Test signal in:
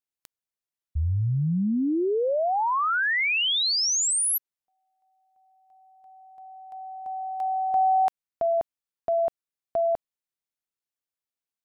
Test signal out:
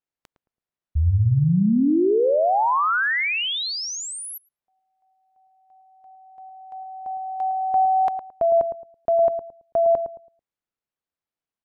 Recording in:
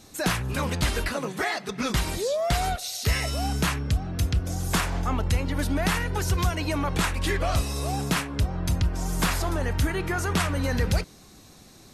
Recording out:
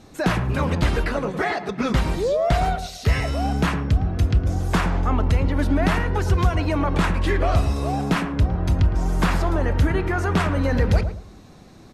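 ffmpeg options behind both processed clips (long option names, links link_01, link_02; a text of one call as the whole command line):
ffmpeg -i in.wav -filter_complex "[0:a]lowpass=frequency=1600:poles=1,asplit=2[link_01][link_02];[link_02]adelay=110,lowpass=frequency=900:poles=1,volume=-7.5dB,asplit=2[link_03][link_04];[link_04]adelay=110,lowpass=frequency=900:poles=1,volume=0.29,asplit=2[link_05][link_06];[link_06]adelay=110,lowpass=frequency=900:poles=1,volume=0.29,asplit=2[link_07][link_08];[link_08]adelay=110,lowpass=frequency=900:poles=1,volume=0.29[link_09];[link_01][link_03][link_05][link_07][link_09]amix=inputs=5:normalize=0,volume=5.5dB" out.wav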